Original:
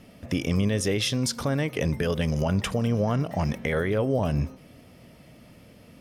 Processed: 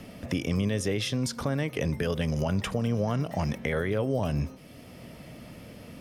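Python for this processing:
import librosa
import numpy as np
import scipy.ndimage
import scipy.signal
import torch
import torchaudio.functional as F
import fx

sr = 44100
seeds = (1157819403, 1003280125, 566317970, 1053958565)

y = fx.band_squash(x, sr, depth_pct=40)
y = y * librosa.db_to_amplitude(-3.0)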